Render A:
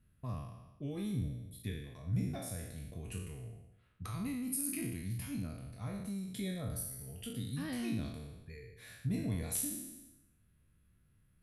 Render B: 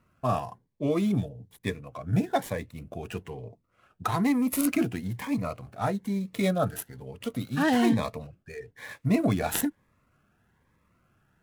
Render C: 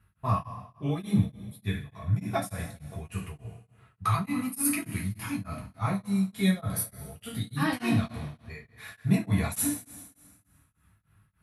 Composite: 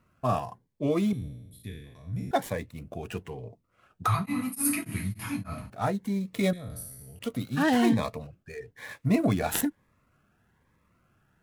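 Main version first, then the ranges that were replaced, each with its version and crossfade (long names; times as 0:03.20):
B
0:01.13–0:02.31: punch in from A
0:04.07–0:05.70: punch in from C
0:06.53–0:07.19: punch in from A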